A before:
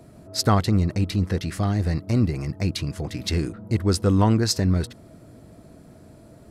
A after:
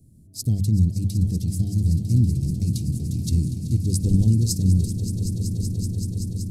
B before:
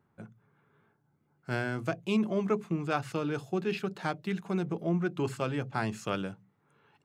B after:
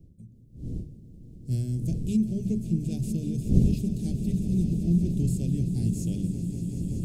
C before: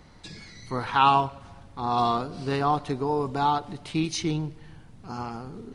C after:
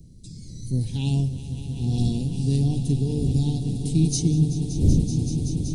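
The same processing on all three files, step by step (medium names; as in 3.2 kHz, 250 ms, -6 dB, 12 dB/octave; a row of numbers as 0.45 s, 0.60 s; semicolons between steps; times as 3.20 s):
wind noise 420 Hz -38 dBFS; Chebyshev band-stop 150–8700 Hz, order 2; hum notches 50/100/150/200 Hz; level rider gain up to 7.5 dB; echo with a slow build-up 190 ms, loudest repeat 5, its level -13 dB; peak normalisation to -6 dBFS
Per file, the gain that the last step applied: -3.0 dB, +2.5 dB, +5.5 dB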